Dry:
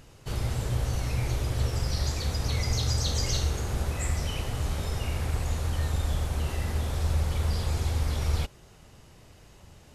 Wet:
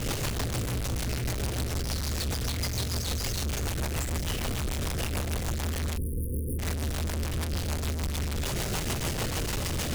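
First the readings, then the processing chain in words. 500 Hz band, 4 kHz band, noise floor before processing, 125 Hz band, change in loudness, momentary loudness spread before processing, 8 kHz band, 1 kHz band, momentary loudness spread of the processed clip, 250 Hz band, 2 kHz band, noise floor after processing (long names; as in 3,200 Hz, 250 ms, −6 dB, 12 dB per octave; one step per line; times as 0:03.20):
+1.5 dB, +1.0 dB, −53 dBFS, −2.5 dB, −1.5 dB, 4 LU, +3.0 dB, +0.5 dB, 1 LU, +4.0 dB, +3.0 dB, −32 dBFS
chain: sign of each sample alone
rotating-speaker cabinet horn 6.7 Hz
time-frequency box erased 0:05.97–0:06.59, 530–8,900 Hz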